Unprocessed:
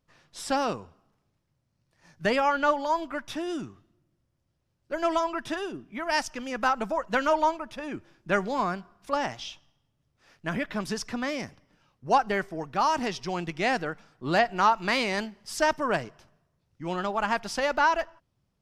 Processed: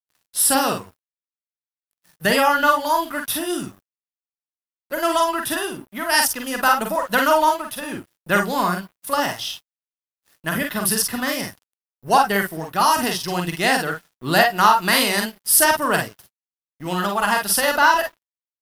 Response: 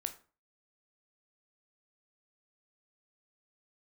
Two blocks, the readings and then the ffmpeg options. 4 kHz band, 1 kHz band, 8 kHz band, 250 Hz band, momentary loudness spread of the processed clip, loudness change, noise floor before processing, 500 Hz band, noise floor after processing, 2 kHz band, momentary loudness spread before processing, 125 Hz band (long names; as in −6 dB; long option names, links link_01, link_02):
+11.5 dB, +7.5 dB, +19.5 dB, +6.5 dB, 13 LU, +8.5 dB, −76 dBFS, +5.5 dB, below −85 dBFS, +9.0 dB, 14 LU, +7.5 dB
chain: -filter_complex "[0:a]highpass=frequency=110:poles=1,equalizer=frequency=470:width=0.38:gain=-7.5,bandreject=frequency=2300:width=5.7,asplit=2[link_01][link_02];[link_02]aecho=0:1:45|56:0.596|0.335[link_03];[link_01][link_03]amix=inputs=2:normalize=0,aexciter=amount=13:drive=3.7:freq=9500,acontrast=72,aeval=exprs='sgn(val(0))*max(abs(val(0))-0.00376,0)':channel_layout=same,volume=5dB"